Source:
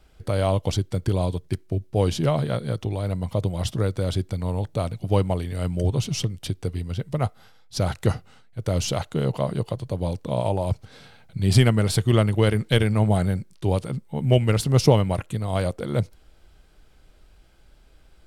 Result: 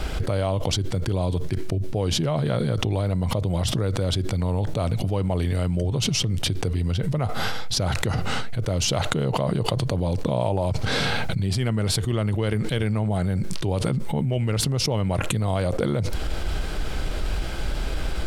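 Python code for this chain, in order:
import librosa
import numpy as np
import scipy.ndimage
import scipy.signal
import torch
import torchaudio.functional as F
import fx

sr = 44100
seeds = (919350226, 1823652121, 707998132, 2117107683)

y = fx.high_shelf(x, sr, hz=10000.0, db=-8.0)
y = fx.env_flatten(y, sr, amount_pct=100)
y = y * 10.0 ** (-11.5 / 20.0)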